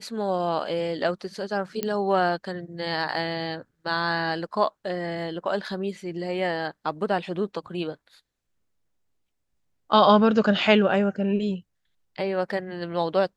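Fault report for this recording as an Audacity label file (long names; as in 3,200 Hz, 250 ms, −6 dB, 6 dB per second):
1.830000	1.830000	click −12 dBFS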